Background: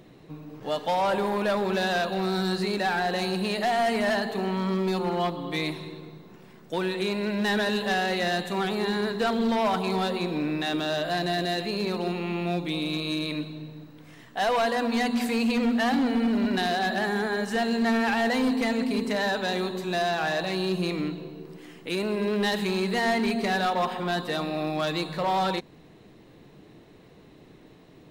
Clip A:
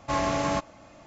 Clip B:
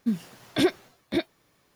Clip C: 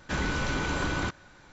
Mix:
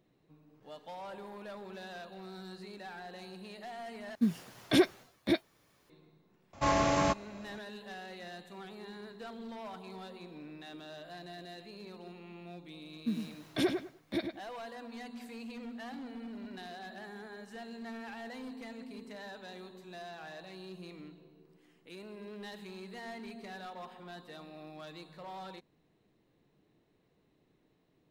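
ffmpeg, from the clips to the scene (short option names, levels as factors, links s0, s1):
-filter_complex "[2:a]asplit=2[s0][s1];[0:a]volume=0.1[s2];[s1]asplit=2[s3][s4];[s4]adelay=101,lowpass=f=2700:p=1,volume=0.501,asplit=2[s5][s6];[s6]adelay=101,lowpass=f=2700:p=1,volume=0.23,asplit=2[s7][s8];[s8]adelay=101,lowpass=f=2700:p=1,volume=0.23[s9];[s3][s5][s7][s9]amix=inputs=4:normalize=0[s10];[s2]asplit=2[s11][s12];[s11]atrim=end=4.154[s13];[s0]atrim=end=1.75,asetpts=PTS-STARTPTS,volume=0.75[s14];[s12]atrim=start=5.896[s15];[1:a]atrim=end=1.06,asetpts=PTS-STARTPTS,volume=0.841,afade=t=in:d=0.004:c=hsin,afade=t=out:st=1.056:d=0.004:c=hsin,adelay=6530[s16];[s10]atrim=end=1.75,asetpts=PTS-STARTPTS,volume=0.398,afade=t=in:d=0.004:c=hsin,afade=t=out:st=1.746:d=0.004:c=hsin,adelay=573300S[s17];[s13][s14]acrossfade=d=0.004:c1=hsin:c2=hsin[s18];[s18][s15]acrossfade=d=0.004:c1=hsin:c2=hsin[s19];[s19][s16][s17]amix=inputs=3:normalize=0"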